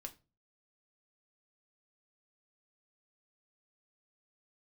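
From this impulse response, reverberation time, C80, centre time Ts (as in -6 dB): 0.30 s, 24.0 dB, 7 ms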